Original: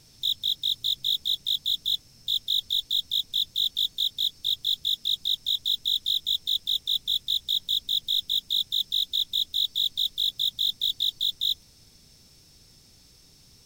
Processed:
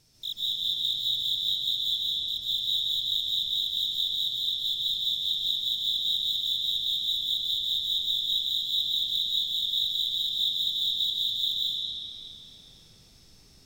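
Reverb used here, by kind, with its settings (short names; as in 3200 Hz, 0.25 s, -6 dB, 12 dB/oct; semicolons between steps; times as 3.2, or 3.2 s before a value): digital reverb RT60 4.2 s, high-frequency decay 0.55×, pre-delay 0.11 s, DRR -9 dB; gain -8.5 dB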